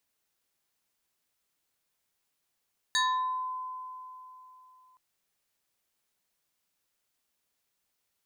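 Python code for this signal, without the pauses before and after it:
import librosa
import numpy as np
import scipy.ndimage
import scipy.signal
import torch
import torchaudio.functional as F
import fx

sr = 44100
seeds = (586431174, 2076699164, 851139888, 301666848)

y = fx.fm2(sr, length_s=2.02, level_db=-22.5, carrier_hz=1020.0, ratio=2.73, index=2.2, index_s=0.63, decay_s=3.31, shape='exponential')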